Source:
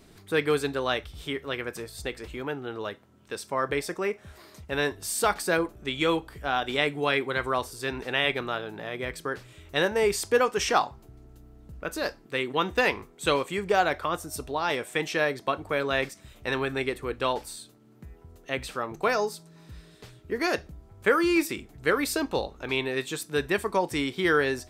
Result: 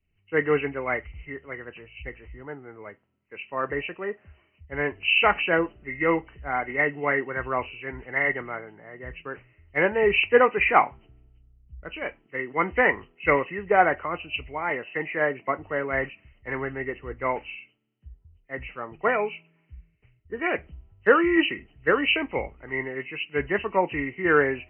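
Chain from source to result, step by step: knee-point frequency compression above 1.8 kHz 4:1; three bands expanded up and down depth 100%

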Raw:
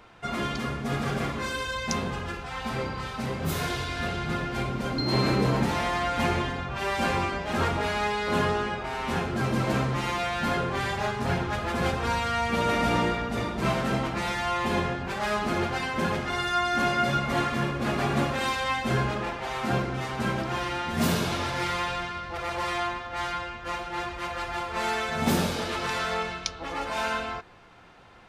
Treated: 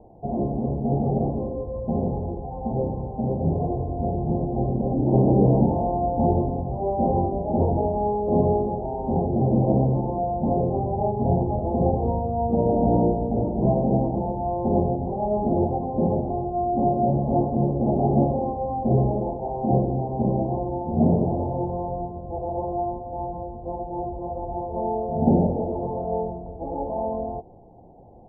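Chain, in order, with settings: steep low-pass 830 Hz 72 dB/octave; trim +7 dB

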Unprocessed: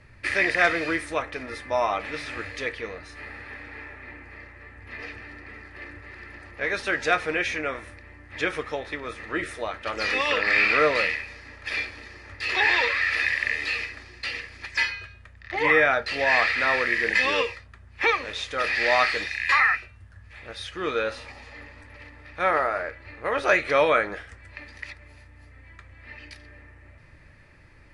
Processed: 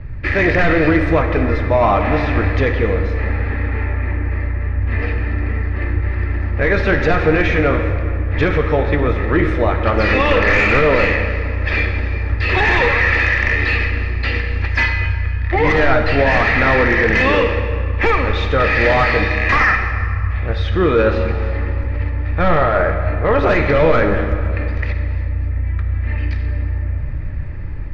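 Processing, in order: level rider gain up to 3.5 dB; in parallel at -11.5 dB: sine folder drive 12 dB, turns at -4 dBFS; on the sum: RIAA curve playback; peak limiter -7 dBFS, peak gain reduction 6.5 dB; distance through air 130 m; on a send at -6 dB: reverberation RT60 2.6 s, pre-delay 43 ms; on the sum: trim +1.5 dB

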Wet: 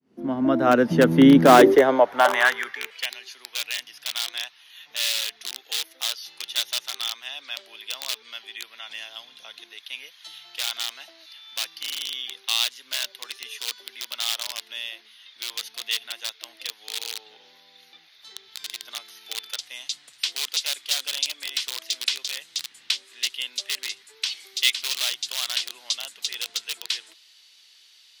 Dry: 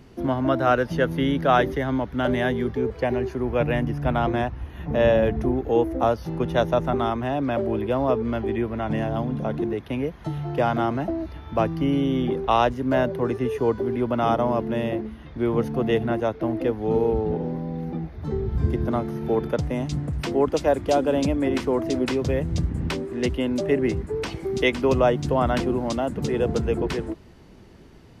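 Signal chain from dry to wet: fade-in on the opening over 1.49 s; peaking EQ 81 Hz +3 dB 0.84 oct; in parallel at -8.5 dB: integer overflow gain 14.5 dB; on the sum: high-pass sweep 220 Hz -> 3.7 kHz, 1.41–3.14 s; trim +4 dB

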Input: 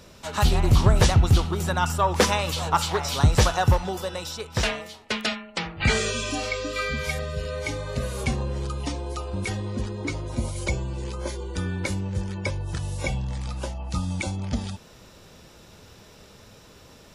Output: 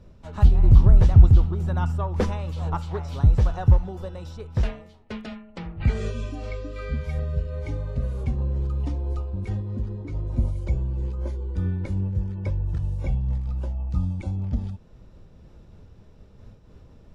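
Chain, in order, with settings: tilt EQ -4 dB/octave; random flutter of the level, depth 60%; trim -7 dB

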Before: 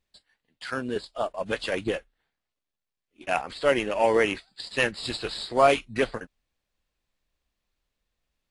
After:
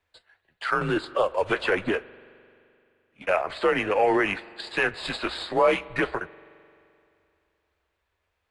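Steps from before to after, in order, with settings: frequency shift -95 Hz; in parallel at -1.5 dB: compression, threshold -32 dBFS, peak gain reduction 17 dB; on the sum: peak limiter -14 dBFS, peak gain reduction 7.5 dB; three-band isolator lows -13 dB, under 420 Hz, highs -14 dB, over 2.5 kHz; on a send at -19 dB: reverberation RT60 2.6 s, pre-delay 43 ms; 0.81–1.92 s: on the sum: three bands compressed up and down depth 70%; trim +5.5 dB

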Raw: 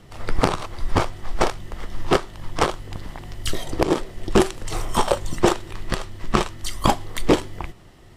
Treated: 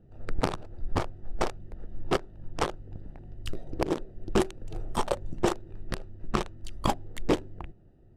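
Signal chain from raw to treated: local Wiener filter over 41 samples; trim -8 dB

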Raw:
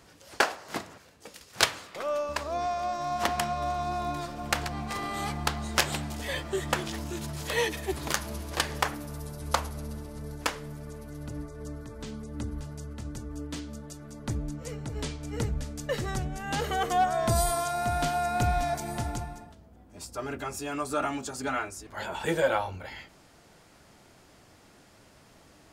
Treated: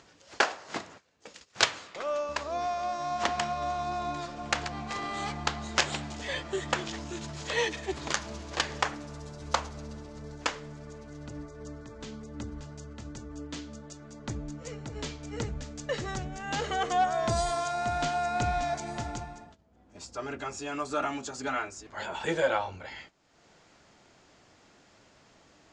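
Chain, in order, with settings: gate -49 dBFS, range -14 dB; Chebyshev low-pass 7.2 kHz, order 4; bass shelf 160 Hz -6 dB; upward compressor, threshold -47 dBFS

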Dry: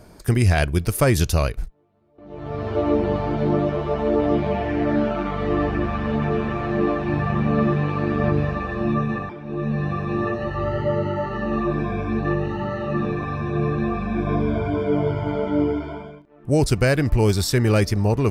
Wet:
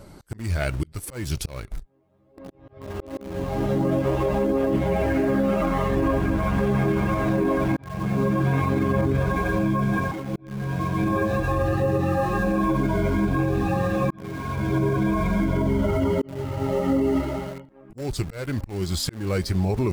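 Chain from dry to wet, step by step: coarse spectral quantiser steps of 15 dB; slow attack 718 ms; speed mistake 48 kHz file played as 44.1 kHz; in parallel at -9.5 dB: word length cut 6-bit, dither none; on the sum: peak limiter -16.5 dBFS, peak gain reduction 10 dB; trim +2 dB

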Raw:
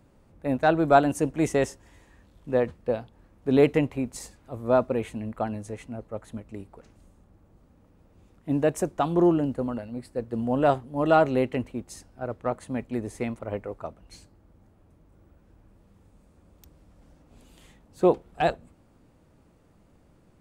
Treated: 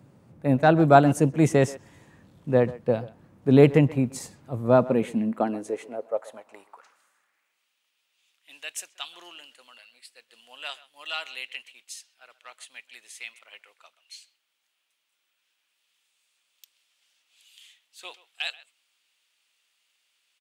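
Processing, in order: high-pass sweep 130 Hz -> 3 kHz, 4.73–7.75 s; speakerphone echo 130 ms, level -18 dB; trim +2 dB

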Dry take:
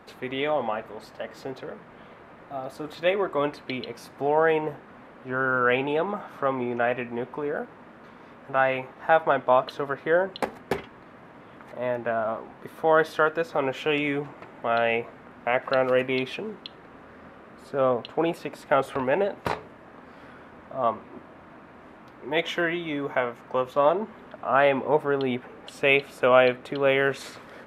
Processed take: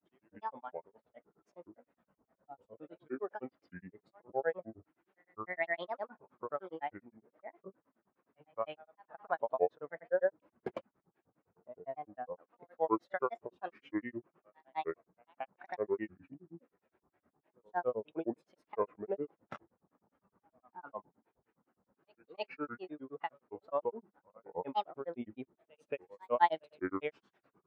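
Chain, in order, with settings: reverse echo 233 ms -19.5 dB; granulator 100 ms, grains 9.7 per s, pitch spread up and down by 7 st; spectral contrast expander 1.5:1; trim -8.5 dB

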